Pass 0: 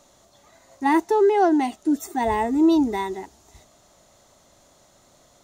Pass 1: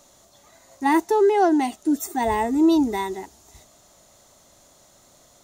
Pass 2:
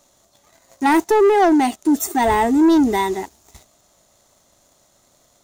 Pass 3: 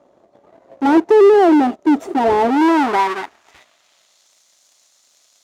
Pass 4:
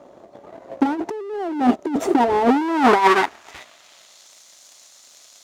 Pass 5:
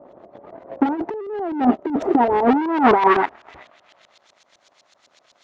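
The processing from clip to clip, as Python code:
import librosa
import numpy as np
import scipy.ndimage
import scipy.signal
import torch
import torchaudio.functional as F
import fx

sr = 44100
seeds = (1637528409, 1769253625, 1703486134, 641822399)

y1 = fx.high_shelf(x, sr, hz=6600.0, db=8.0)
y2 = fx.leveller(y1, sr, passes=2)
y3 = fx.halfwave_hold(y2, sr)
y3 = fx.filter_sweep_bandpass(y3, sr, from_hz=440.0, to_hz=5500.0, start_s=2.33, end_s=4.32, q=1.1)
y3 = y3 * 10.0 ** (3.5 / 20.0)
y4 = fx.over_compress(y3, sr, threshold_db=-18.0, ratio=-0.5)
y4 = y4 * 10.0 ** (1.5 / 20.0)
y5 = fx.filter_lfo_lowpass(y4, sr, shape='saw_up', hz=7.9, low_hz=610.0, high_hz=4200.0, q=0.96)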